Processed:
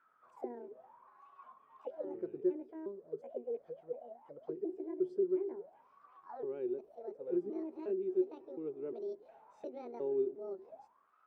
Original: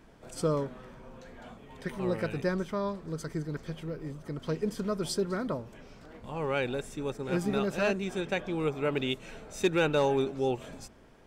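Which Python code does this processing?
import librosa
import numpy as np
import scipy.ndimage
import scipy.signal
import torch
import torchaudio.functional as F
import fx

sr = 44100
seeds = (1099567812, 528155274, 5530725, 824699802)

y = fx.pitch_trill(x, sr, semitones=8.0, every_ms=357)
y = fx.auto_wah(y, sr, base_hz=370.0, top_hz=1400.0, q=19.0, full_db=-30.0, direction='down')
y = F.gain(torch.from_numpy(y), 7.0).numpy()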